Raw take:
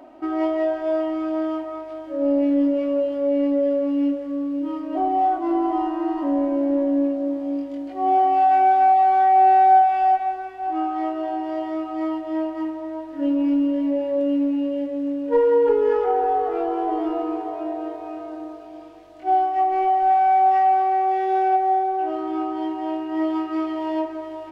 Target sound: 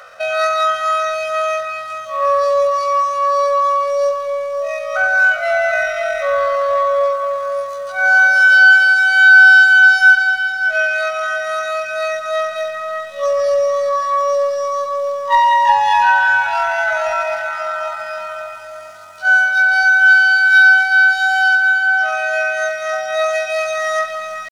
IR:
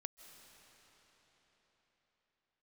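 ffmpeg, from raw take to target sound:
-filter_complex "[0:a]asetrate=88200,aresample=44100,atempo=0.5,highshelf=f=2300:g=10,asplit=2[s0][s1];[1:a]atrim=start_sample=2205,asetrate=52920,aresample=44100[s2];[s1][s2]afir=irnorm=-1:irlink=0,volume=2.51[s3];[s0][s3]amix=inputs=2:normalize=0,volume=0.708"

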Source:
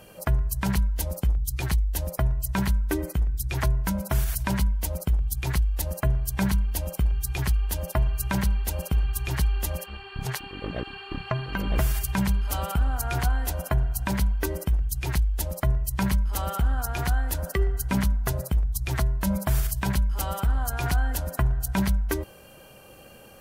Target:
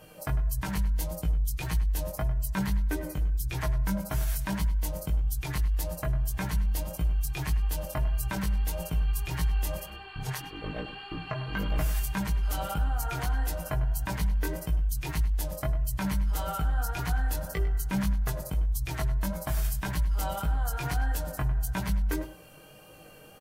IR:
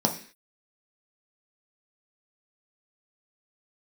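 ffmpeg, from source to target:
-filter_complex "[0:a]aecho=1:1:6.5:0.47,asplit=2[s0][s1];[s1]alimiter=limit=0.0944:level=0:latency=1:release=32,volume=1.26[s2];[s0][s2]amix=inputs=2:normalize=0,flanger=delay=17.5:depth=3.5:speed=1.7,asplit=2[s3][s4];[s4]adelay=101,lowpass=f=4700:p=1,volume=0.211,asplit=2[s5][s6];[s6]adelay=101,lowpass=f=4700:p=1,volume=0.18[s7];[s3][s5][s7]amix=inputs=3:normalize=0,volume=0.422"

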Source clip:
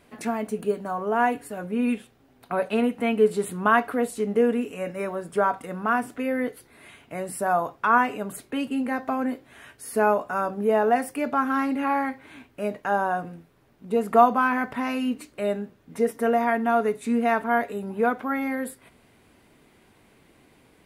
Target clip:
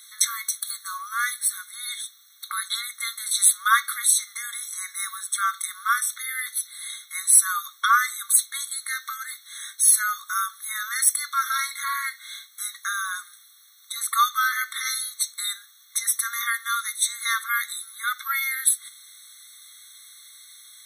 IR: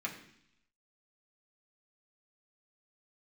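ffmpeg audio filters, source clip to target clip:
-af "aexciter=amount=9.1:drive=4:freq=2600,afftfilt=real='re*eq(mod(floor(b*sr/1024/1100),2),1)':imag='im*eq(mod(floor(b*sr/1024/1100),2),1)':win_size=1024:overlap=0.75,volume=1.58"

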